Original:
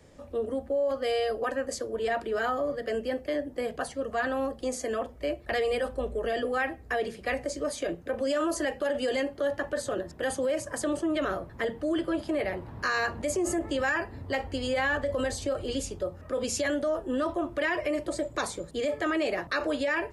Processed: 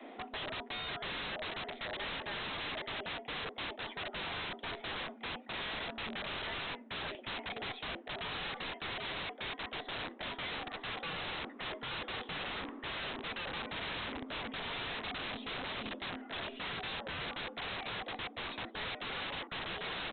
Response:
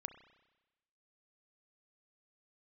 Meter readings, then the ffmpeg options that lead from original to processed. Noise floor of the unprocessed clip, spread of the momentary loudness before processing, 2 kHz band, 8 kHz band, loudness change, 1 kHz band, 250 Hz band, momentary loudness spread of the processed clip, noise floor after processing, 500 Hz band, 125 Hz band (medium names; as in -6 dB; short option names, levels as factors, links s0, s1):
-48 dBFS, 5 LU, -7.0 dB, under -40 dB, -9.5 dB, -7.5 dB, -15.5 dB, 2 LU, -52 dBFS, -18.0 dB, -6.5 dB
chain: -af "highpass=55,equalizer=f=240:t=o:w=2.9:g=-4,afreqshift=170,areverse,acompressor=threshold=0.00794:ratio=12,areverse,aeval=exprs='0.0211*(cos(1*acos(clip(val(0)/0.0211,-1,1)))-cos(1*PI/2))+0.00299*(cos(3*acos(clip(val(0)/0.0211,-1,1)))-cos(3*PI/2))+0.000237*(cos(6*acos(clip(val(0)/0.0211,-1,1)))-cos(6*PI/2))':c=same,aresample=8000,aeval=exprs='(mod(282*val(0)+1,2)-1)/282':c=same,aresample=44100,volume=5.01"